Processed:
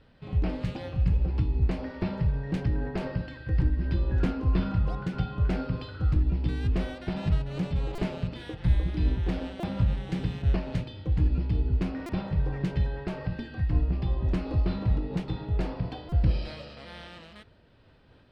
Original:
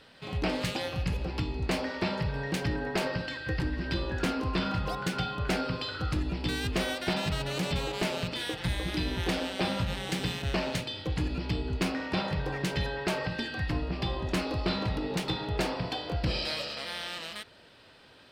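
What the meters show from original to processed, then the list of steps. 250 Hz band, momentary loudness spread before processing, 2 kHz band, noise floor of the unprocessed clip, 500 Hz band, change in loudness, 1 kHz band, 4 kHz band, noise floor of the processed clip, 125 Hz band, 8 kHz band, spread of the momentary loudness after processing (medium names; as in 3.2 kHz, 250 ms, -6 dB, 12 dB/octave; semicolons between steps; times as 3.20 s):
+1.0 dB, 3 LU, -9.0 dB, -56 dBFS, -4.0 dB, +2.5 dB, -6.5 dB, -12.5 dB, -57 dBFS, +6.5 dB, under -15 dB, 7 LU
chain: RIAA curve playback; buffer glitch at 7.95/9.60/12.06/16.09 s, samples 128, times 10; random flutter of the level, depth 55%; trim -4 dB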